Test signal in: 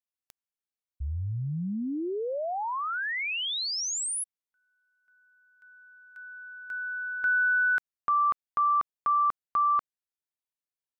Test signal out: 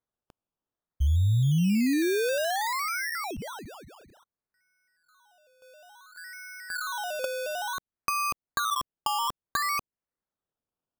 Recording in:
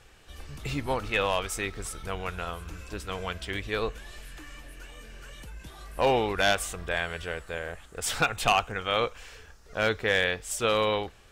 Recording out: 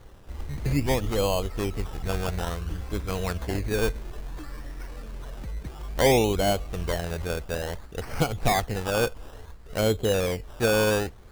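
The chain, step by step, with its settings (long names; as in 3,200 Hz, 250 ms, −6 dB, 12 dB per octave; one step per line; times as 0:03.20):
treble cut that deepens with the level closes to 900 Hz, closed at −25.5 dBFS
low-shelf EQ 500 Hz +9.5 dB
sample-and-hold swept by an LFO 17×, swing 60% 0.58 Hz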